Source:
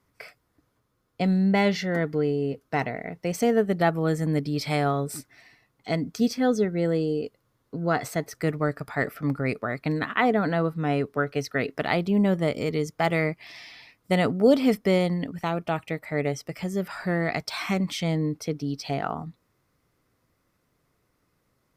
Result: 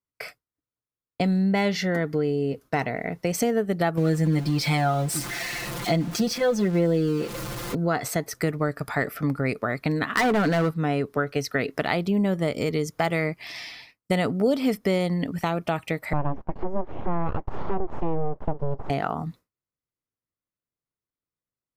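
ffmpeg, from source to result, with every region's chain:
-filter_complex "[0:a]asettb=1/sr,asplit=3[s0][s1][s2];[s0]atrim=end=3.974[s3];[s1]atrim=start=3.97:end=7.75,asetpts=PTS-STARTPTS,afade=t=in:d=0.004:c=qsin,afade=t=out:st=3.776:d=0.004:c=qsin,aeval=exprs='val(0)+0.5*0.0168*sgn(val(0))':c=same,highshelf=f=8500:g=-7.5,aecho=1:1:5.8:0.92,atrim=end_sample=166698[s4];[s2]atrim=start=7.746[s5];[s3][s4]acrossfade=d=0.004:c1=hsin:c2=qsin[s6];[s6][s5]acrossfade=d=0.004:c1=qsin:c2=hsin,asettb=1/sr,asplit=3[s7][s8][s9];[s7]atrim=end=10.134[s10];[s8]atrim=start=10.13:end=10.71,asetpts=PTS-STARTPTS,afade=t=in:d=0.004:c=qsin,afade=t=out:st=0.576:d=0.004:c=qsin,acontrast=49,asoftclip=type=hard:threshold=0.141[s11];[s9]atrim=start=10.706[s12];[s10][s11]acrossfade=d=0.004:c1=hsin:c2=qsin[s13];[s13][s12]acrossfade=d=0.004:c1=qsin:c2=hsin,asettb=1/sr,asplit=3[s14][s15][s16];[s14]atrim=end=16.134[s17];[s15]atrim=start=16.13:end=18.9,asetpts=PTS-STARTPTS,afade=t=in:d=0.004:c=qsin,afade=t=out:st=2.766:d=0.004:c=qsin,aeval=exprs='abs(val(0))':c=same,lowpass=f=930:t=q:w=1.6,lowshelf=f=350:g=6[s18];[s16]atrim=start=18.896[s19];[s17][s18]acrossfade=d=0.004:c1=hsin:c2=qsin[s20];[s20][s19]acrossfade=d=0.004:c1=qsin:c2=hsin,agate=range=0.0224:threshold=0.00708:ratio=3:detection=peak,highshelf=f=6300:g=4.5,acompressor=threshold=0.0316:ratio=2.5,volume=2.11"

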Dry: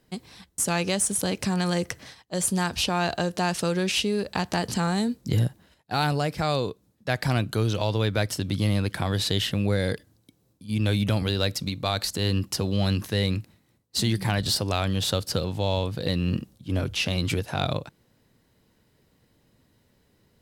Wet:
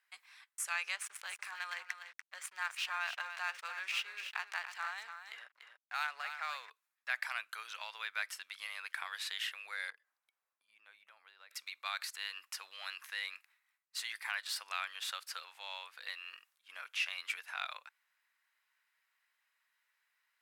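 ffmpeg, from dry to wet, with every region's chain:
-filter_complex "[0:a]asettb=1/sr,asplit=3[s0][s1][s2];[s0]atrim=end=0.964[s3];[s1]atrim=start=0.96:end=6.7,asetpts=PTS-STARTPTS,afade=t=in:d=0.004:c=qsin,afade=t=out:st=5.736:d=0.004:c=qsin,adynamicsmooth=sensitivity=3.5:basefreq=3200,aecho=1:1:290:0.398,atrim=end_sample=253134,aeval=exprs='sgn(val(0))*max(abs(val(0))-0.0075,0)':c=same[s4];[s2]atrim=start=6.696[s5];[s3][s4]acrossfade=d=0.004:c1=hsin:c2=qsin[s6];[s6][s5]acrossfade=d=0.004:c1=qsin:c2=hsin,asettb=1/sr,asplit=3[s7][s8][s9];[s7]atrim=end=9.904[s10];[s8]atrim=start=9.9:end=11.51,asetpts=PTS-STARTPTS,afade=t=in:d=0.004:c=qsin,afade=t=out:st=1.606:d=0.004:c=qsin,acompressor=threshold=0.00282:ratio=2:attack=3.2:release=140:knee=1:detection=peak,tiltshelf=f=1300:g=8.5[s11];[s9]atrim=start=11.506[s12];[s10][s11]acrossfade=d=0.004:c1=hsin:c2=qsin[s13];[s13][s12]acrossfade=d=0.004:c1=qsin:c2=hsin,highpass=f=1200:w=0.5412,highpass=f=1200:w=1.3066,highshelf=f=3100:t=q:w=1.5:g=-7,bandreject=f=3000:w=24,volume=0.531"

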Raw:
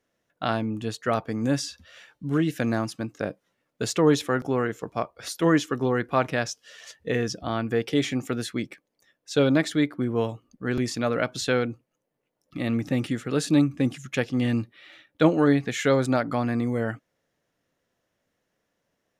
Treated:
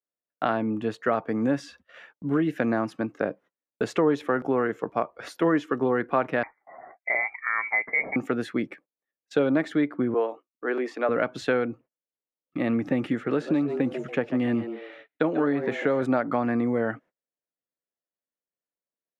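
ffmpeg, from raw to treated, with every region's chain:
-filter_complex "[0:a]asettb=1/sr,asplit=3[s0][s1][s2];[s0]atrim=end=6.434[s3];[s1]atrim=start=6.43:end=8.16,asetpts=PTS-STARTPTS,afade=t=in:d=0.004:c=qsin,afade=t=out:st=1.726:d=0.004:c=qsin,highpass=260,lowpass=f=2100:t=q:w=0.5098,lowpass=f=2100:t=q:w=0.6013,lowpass=f=2100:t=q:w=0.9,lowpass=f=2100:t=q:w=2.563,afreqshift=-2500[s4];[s2]atrim=start=8.156[s5];[s3][s4]acrossfade=d=0.004:c1=hsin:c2=qsin[s6];[s6][s5]acrossfade=d=0.004:c1=qsin:c2=hsin,asettb=1/sr,asplit=3[s7][s8][s9];[s7]atrim=end=10.144[s10];[s8]atrim=start=10.14:end=11.09,asetpts=PTS-STARTPTS,afade=t=in:d=0.004:c=qsin,afade=t=out:st=0.946:d=0.004:c=qsin,highpass=f=340:w=0.5412,highpass=f=340:w=1.3066,highshelf=f=4200:g=-10,agate=range=0.0224:threshold=0.00126:ratio=3:release=100:detection=peak[s11];[s9]atrim=start=11.086[s12];[s10][s11]acrossfade=d=0.004:c1=hsin:c2=qsin[s13];[s13][s12]acrossfade=d=0.004:c1=qsin:c2=hsin,asettb=1/sr,asplit=3[s14][s15][s16];[s14]atrim=end=13.134[s17];[s15]atrim=start=13.13:end=16.02,asetpts=PTS-STARTPTS,afade=t=in:d=0.004:c=qsin,afade=t=out:st=2.886:d=0.004:c=qsin,asplit=4[s18][s19][s20][s21];[s19]adelay=141,afreqshift=110,volume=0.188[s22];[s20]adelay=282,afreqshift=220,volume=0.0603[s23];[s21]adelay=423,afreqshift=330,volume=0.0193[s24];[s18][s22][s23][s24]amix=inputs=4:normalize=0,atrim=end_sample=127449,acrossover=split=1500|6300[s25][s26][s27];[s25]acompressor=threshold=0.0891:ratio=4[s28];[s26]acompressor=threshold=0.0141:ratio=4[s29];[s27]acompressor=threshold=0.00178:ratio=4[s30];[s28][s29][s30]amix=inputs=3:normalize=0[s31];[s16]atrim=start=16.016[s32];[s17][s31]acrossfade=d=0.004:c1=hsin:c2=qsin[s33];[s33][s32]acrossfade=d=0.004:c1=qsin:c2=hsin,acrossover=split=190 2400:gain=0.224 1 0.112[s34][s35][s36];[s34][s35][s36]amix=inputs=3:normalize=0,acompressor=threshold=0.0447:ratio=2.5,agate=range=0.0355:threshold=0.002:ratio=16:detection=peak,volume=1.88"

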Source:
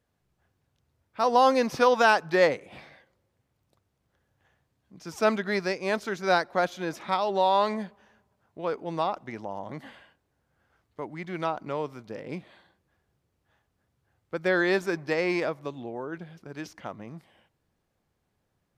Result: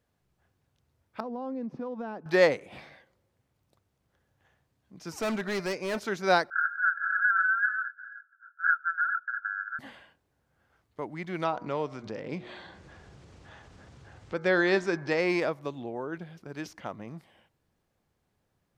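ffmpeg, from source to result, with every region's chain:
-filter_complex "[0:a]asettb=1/sr,asplit=3[s0][s1][s2];[s0]atrim=end=1.204[s3];[s1]atrim=start=1.2:end=2.26,asetpts=PTS-STARTPTS,afade=t=in:d=0.004:c=qsin,afade=t=out:st=1.056:d=0.004:c=qsin,bandpass=f=220:t=q:w=1.7,acompressor=threshold=0.0224:ratio=3:attack=3.2:release=140:knee=1:detection=peak[s4];[s2]atrim=start=2.256[s5];[s3][s4]acrossfade=d=0.004:c1=hsin:c2=qsin[s6];[s6][s5]acrossfade=d=0.004:c1=qsin:c2=hsin,asettb=1/sr,asplit=3[s7][s8][s9];[s7]atrim=end=5.094[s10];[s8]atrim=start=5.09:end=5.99,asetpts=PTS-STARTPTS,afade=t=in:d=0.004:c=qsin,afade=t=out:st=0.896:d=0.004:c=qsin,bandreject=f=3400:w=6.4,bandreject=f=298:t=h:w=4,bandreject=f=596:t=h:w=4,bandreject=f=894:t=h:w=4,bandreject=f=1192:t=h:w=4,bandreject=f=1490:t=h:w=4,bandreject=f=1788:t=h:w=4,bandreject=f=2086:t=h:w=4,bandreject=f=2384:t=h:w=4,bandreject=f=2682:t=h:w=4,bandreject=f=2980:t=h:w=4,bandreject=f=3278:t=h:w=4,bandreject=f=3576:t=h:w=4,bandreject=f=3874:t=h:w=4,bandreject=f=4172:t=h:w=4,bandreject=f=4470:t=h:w=4,bandreject=f=4768:t=h:w=4,bandreject=f=5066:t=h:w=4,bandreject=f=5364:t=h:w=4,bandreject=f=5662:t=h:w=4,bandreject=f=5960:t=h:w=4,bandreject=f=6258:t=h:w=4,bandreject=f=6556:t=h:w=4,bandreject=f=6854:t=h:w=4,bandreject=f=7152:t=h:w=4,bandreject=f=7450:t=h:w=4,bandreject=f=7748:t=h:w=4,bandreject=f=8046:t=h:w=4,bandreject=f=8344:t=h:w=4,bandreject=f=8642:t=h:w=4,bandreject=f=8940:t=h:w=4,bandreject=f=9238:t=h:w=4,bandreject=f=9536:t=h:w=4,bandreject=f=9834:t=h:w=4,bandreject=f=10132:t=h:w=4,bandreject=f=10430:t=h:w=4,bandreject=f=10728:t=h:w=4,asoftclip=type=hard:threshold=0.0447[s11];[s9]atrim=start=5.986[s12];[s10][s11]acrossfade=d=0.004:c1=hsin:c2=qsin[s13];[s13][s12]acrossfade=d=0.004:c1=qsin:c2=hsin,asettb=1/sr,asplit=3[s14][s15][s16];[s14]atrim=end=6.504[s17];[s15]atrim=start=6.5:end=9.79,asetpts=PTS-STARTPTS,afade=t=in:d=0.004:c=qsin,afade=t=out:st=3.286:d=0.004:c=qsin,aeval=exprs='0.282*sin(PI/2*10*val(0)/0.282)':c=same,asuperpass=centerf=1500:order=20:qfactor=4.1[s18];[s16]atrim=start=9.786[s19];[s17][s18]acrossfade=d=0.004:c1=hsin:c2=qsin[s20];[s20][s19]acrossfade=d=0.004:c1=qsin:c2=hsin,asettb=1/sr,asplit=3[s21][s22][s23];[s21]atrim=end=11.444[s24];[s22]atrim=start=11.44:end=15.2,asetpts=PTS-STARTPTS,afade=t=in:d=0.004:c=qsin,afade=t=out:st=3.756:d=0.004:c=qsin,lowpass=f=7600:w=0.5412,lowpass=f=7600:w=1.3066,bandreject=f=121:t=h:w=4,bandreject=f=242:t=h:w=4,bandreject=f=363:t=h:w=4,bandreject=f=484:t=h:w=4,bandreject=f=605:t=h:w=4,bandreject=f=726:t=h:w=4,bandreject=f=847:t=h:w=4,bandreject=f=968:t=h:w=4,bandreject=f=1089:t=h:w=4,bandreject=f=1210:t=h:w=4,bandreject=f=1331:t=h:w=4,bandreject=f=1452:t=h:w=4,bandreject=f=1573:t=h:w=4,bandreject=f=1694:t=h:w=4,bandreject=f=1815:t=h:w=4,bandreject=f=1936:t=h:w=4,bandreject=f=2057:t=h:w=4,bandreject=f=2178:t=h:w=4,acompressor=mode=upward:threshold=0.0251:ratio=2.5:attack=3.2:release=140:knee=2.83:detection=peak[s25];[s23]atrim=start=15.196[s26];[s24][s25]acrossfade=d=0.004:c1=hsin:c2=qsin[s27];[s27][s26]acrossfade=d=0.004:c1=qsin:c2=hsin"

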